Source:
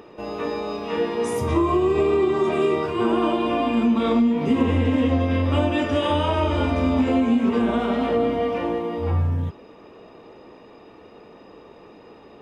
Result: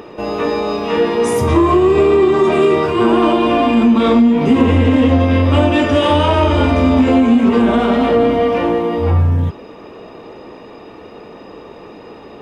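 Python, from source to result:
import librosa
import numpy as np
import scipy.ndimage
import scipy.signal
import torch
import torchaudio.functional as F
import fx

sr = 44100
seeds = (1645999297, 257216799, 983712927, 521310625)

p1 = 10.0 ** (-23.0 / 20.0) * np.tanh(x / 10.0 ** (-23.0 / 20.0))
p2 = x + (p1 * 10.0 ** (-3.5 / 20.0))
y = p2 * 10.0 ** (6.0 / 20.0)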